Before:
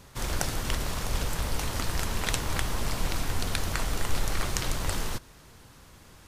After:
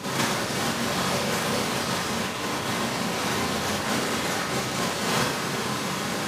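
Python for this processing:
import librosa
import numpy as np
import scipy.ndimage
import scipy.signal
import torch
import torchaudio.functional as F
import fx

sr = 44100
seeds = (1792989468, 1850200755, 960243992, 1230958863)

y = scipy.signal.sosfilt(scipy.signal.butter(4, 140.0, 'highpass', fs=sr, output='sos'), x)
y = fx.high_shelf(y, sr, hz=9400.0, db=-12.0)
y = fx.over_compress(y, sr, threshold_db=-42.0, ratio=-0.5)
y = fx.rev_schroeder(y, sr, rt60_s=0.61, comb_ms=30, drr_db=-9.5)
y = y * librosa.db_to_amplitude(8.5)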